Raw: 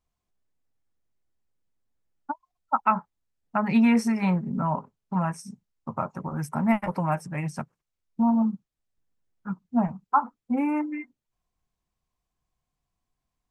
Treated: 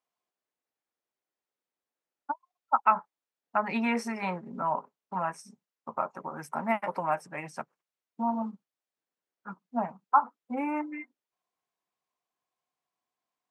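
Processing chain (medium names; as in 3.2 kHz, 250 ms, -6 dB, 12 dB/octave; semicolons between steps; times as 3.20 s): high-pass 420 Hz 12 dB/octave; treble shelf 4.9 kHz -8 dB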